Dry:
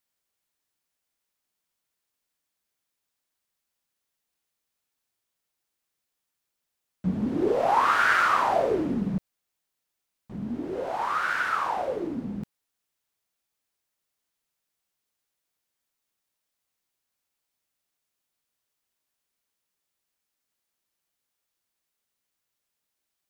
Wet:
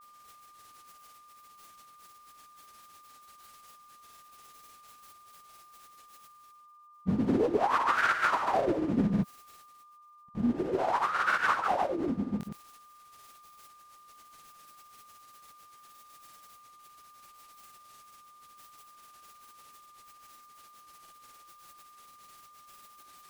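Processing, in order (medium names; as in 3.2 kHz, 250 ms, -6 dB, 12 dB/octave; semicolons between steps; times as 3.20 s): peak limiter -20 dBFS, peak gain reduction 10.5 dB; reverse; upward compressor, threshold -40 dBFS; reverse; tremolo 5.6 Hz, depth 70%; granulator 100 ms, grains 20 per s; whistle 1.2 kHz -59 dBFS; trim +5.5 dB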